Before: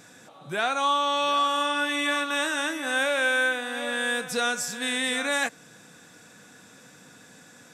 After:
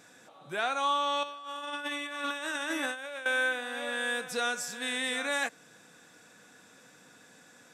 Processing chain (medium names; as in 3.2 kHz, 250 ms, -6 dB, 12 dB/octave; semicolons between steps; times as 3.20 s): 1.23–3.26 s: compressor with a negative ratio -30 dBFS, ratio -0.5; tone controls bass -6 dB, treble -2 dB; trim -4.5 dB